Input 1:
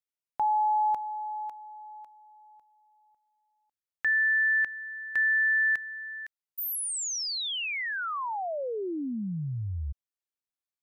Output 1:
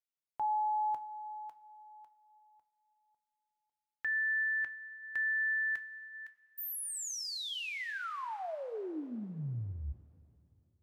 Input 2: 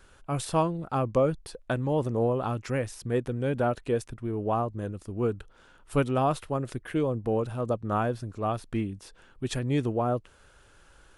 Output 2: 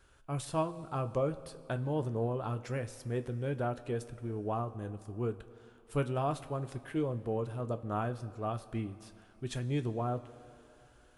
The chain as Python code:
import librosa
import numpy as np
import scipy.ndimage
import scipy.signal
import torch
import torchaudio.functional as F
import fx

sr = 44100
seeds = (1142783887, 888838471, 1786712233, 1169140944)

y = fx.rev_double_slope(x, sr, seeds[0], early_s=0.2, late_s=2.9, knee_db=-18, drr_db=8.0)
y = F.gain(torch.from_numpy(y), -8.0).numpy()